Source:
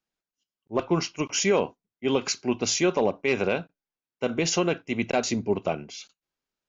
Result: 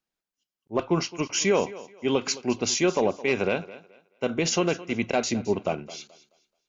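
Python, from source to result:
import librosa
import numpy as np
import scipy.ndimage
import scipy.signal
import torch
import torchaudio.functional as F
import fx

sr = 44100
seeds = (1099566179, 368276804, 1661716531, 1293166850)

y = fx.echo_thinned(x, sr, ms=215, feedback_pct=27, hz=190.0, wet_db=-17)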